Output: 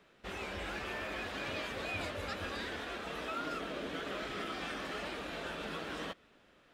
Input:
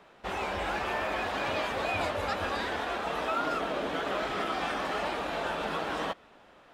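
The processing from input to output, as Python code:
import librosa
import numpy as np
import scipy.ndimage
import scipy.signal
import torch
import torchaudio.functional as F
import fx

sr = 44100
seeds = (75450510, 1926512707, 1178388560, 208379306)

y = fx.peak_eq(x, sr, hz=840.0, db=-10.0, octaves=1.1)
y = y * 10.0 ** (-4.5 / 20.0)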